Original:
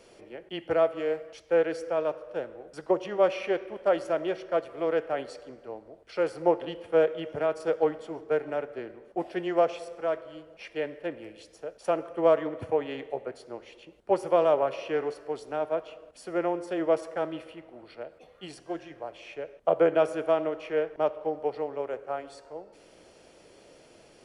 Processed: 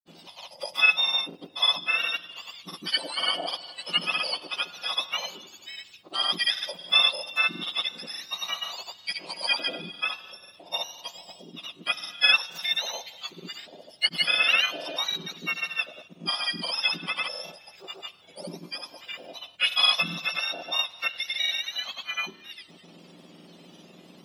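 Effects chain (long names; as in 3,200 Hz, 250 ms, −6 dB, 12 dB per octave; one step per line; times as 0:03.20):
frequency axis turned over on the octave scale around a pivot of 1,300 Hz
granular cloud, pitch spread up and down by 0 semitones
level +6.5 dB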